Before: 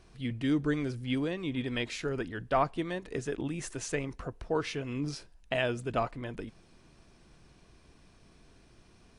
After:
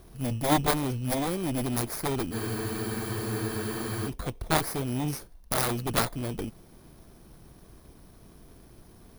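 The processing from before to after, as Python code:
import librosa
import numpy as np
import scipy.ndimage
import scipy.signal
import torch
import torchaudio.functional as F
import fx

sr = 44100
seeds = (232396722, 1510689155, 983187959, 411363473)

p1 = fx.bit_reversed(x, sr, seeds[0], block=16)
p2 = fx.sample_hold(p1, sr, seeds[1], rate_hz=3000.0, jitter_pct=0)
p3 = p1 + (p2 * librosa.db_to_amplitude(-9.0))
p4 = fx.cheby_harmonics(p3, sr, harmonics=(7, 8), levels_db=(-11, -22), full_scale_db=-11.5)
p5 = fx.spec_freeze(p4, sr, seeds[2], at_s=2.35, hold_s=1.73)
y = p5 * librosa.db_to_amplitude(5.5)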